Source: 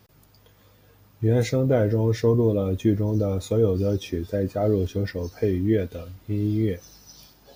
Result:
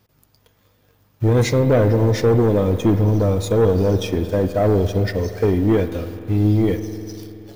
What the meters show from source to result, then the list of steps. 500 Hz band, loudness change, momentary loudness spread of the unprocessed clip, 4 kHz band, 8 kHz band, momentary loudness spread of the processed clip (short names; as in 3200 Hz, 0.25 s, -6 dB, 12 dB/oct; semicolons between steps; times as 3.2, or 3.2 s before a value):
+5.5 dB, +5.5 dB, 7 LU, +7.0 dB, +7.0 dB, 9 LU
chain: sample leveller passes 2; spring tank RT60 3.1 s, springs 48 ms, chirp 75 ms, DRR 10 dB